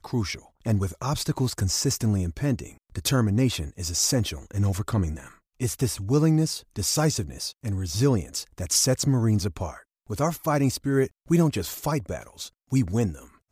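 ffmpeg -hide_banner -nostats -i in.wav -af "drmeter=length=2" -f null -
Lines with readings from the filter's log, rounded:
Channel 1: DR: 11.8
Overall DR: 11.8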